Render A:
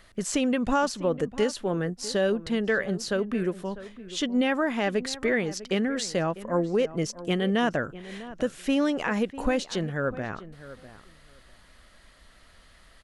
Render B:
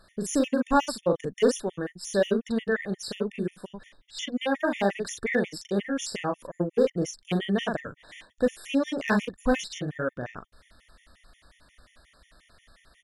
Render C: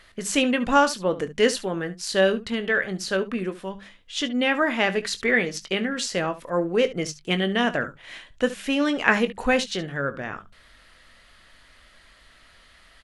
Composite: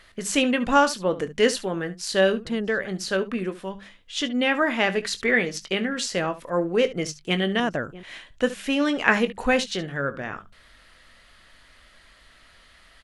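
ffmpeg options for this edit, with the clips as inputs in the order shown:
-filter_complex "[0:a]asplit=2[a][b];[2:a]asplit=3[c][d][e];[c]atrim=end=2.452[f];[a]atrim=start=2.448:end=2.852[g];[d]atrim=start=2.848:end=7.602[h];[b]atrim=start=7.598:end=8.032[i];[e]atrim=start=8.028[j];[f][g]acrossfade=d=0.004:c1=hsin:c2=hsin[k];[k][h]acrossfade=d=0.004:c1=hsin:c2=hsin[l];[l][i]acrossfade=d=0.004:c1=hsin:c2=hsin[m];[m][j]acrossfade=d=0.004:c1=hsin:c2=hsin"

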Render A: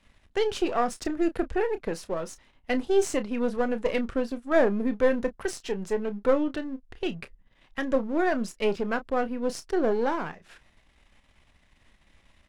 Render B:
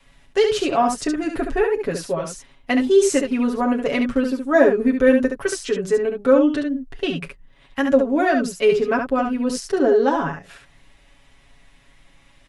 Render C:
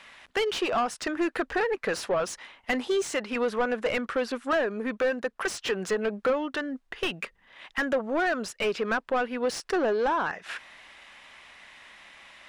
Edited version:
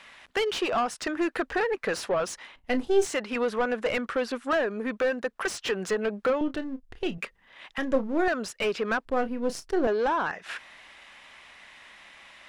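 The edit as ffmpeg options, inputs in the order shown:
-filter_complex "[0:a]asplit=4[a][b][c][d];[2:a]asplit=5[e][f][g][h][i];[e]atrim=end=2.562[j];[a]atrim=start=2.558:end=3.062[k];[f]atrim=start=3.058:end=6.412[l];[b]atrim=start=6.408:end=7.182[m];[g]atrim=start=7.178:end=7.782[n];[c]atrim=start=7.778:end=8.282[o];[h]atrim=start=8.278:end=9.052[p];[d]atrim=start=9.048:end=9.872[q];[i]atrim=start=9.868[r];[j][k]acrossfade=d=0.004:c1=hsin:c2=hsin[s];[s][l]acrossfade=d=0.004:c1=hsin:c2=hsin[t];[t][m]acrossfade=d=0.004:c1=hsin:c2=hsin[u];[u][n]acrossfade=d=0.004:c1=hsin:c2=hsin[v];[v][o]acrossfade=d=0.004:c1=hsin:c2=hsin[w];[w][p]acrossfade=d=0.004:c1=hsin:c2=hsin[x];[x][q]acrossfade=d=0.004:c1=hsin:c2=hsin[y];[y][r]acrossfade=d=0.004:c1=hsin:c2=hsin"

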